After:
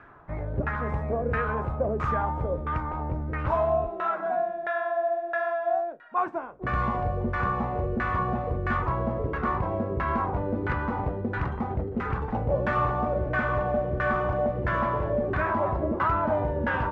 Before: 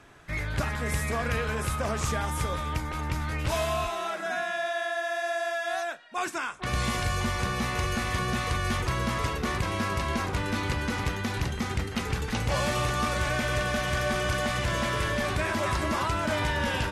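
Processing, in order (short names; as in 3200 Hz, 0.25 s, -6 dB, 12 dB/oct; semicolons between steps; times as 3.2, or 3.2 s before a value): LFO low-pass saw down 1.5 Hz 410–1600 Hz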